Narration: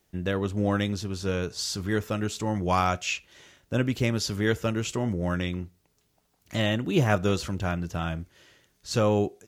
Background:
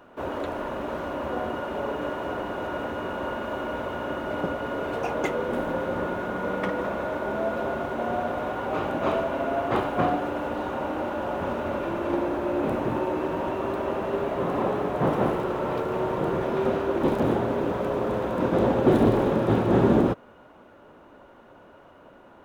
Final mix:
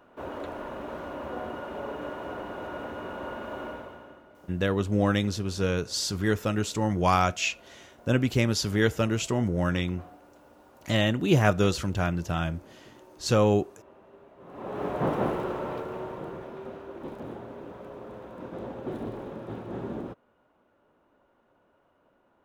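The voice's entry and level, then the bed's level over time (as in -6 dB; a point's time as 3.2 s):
4.35 s, +1.5 dB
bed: 3.67 s -6 dB
4.35 s -26 dB
14.37 s -26 dB
14.84 s -3.5 dB
15.47 s -3.5 dB
16.64 s -16 dB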